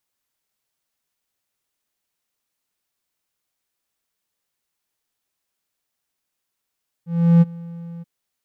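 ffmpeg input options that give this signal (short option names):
-f lavfi -i "aevalsrc='0.531*(1-4*abs(mod(169*t+0.25,1)-0.5))':d=0.982:s=44100,afade=t=in:d=0.355,afade=t=out:st=0.355:d=0.028:silence=0.0668,afade=t=out:st=0.96:d=0.022"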